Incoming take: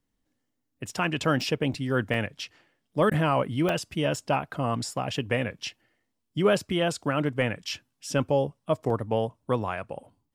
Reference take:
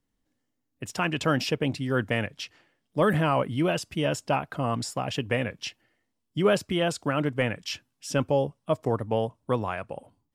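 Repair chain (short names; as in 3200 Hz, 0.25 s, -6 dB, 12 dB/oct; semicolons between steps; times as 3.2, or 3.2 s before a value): interpolate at 1.41/1.74/2.14/3.69/4.16/6/8.9, 2.7 ms; interpolate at 3.1, 13 ms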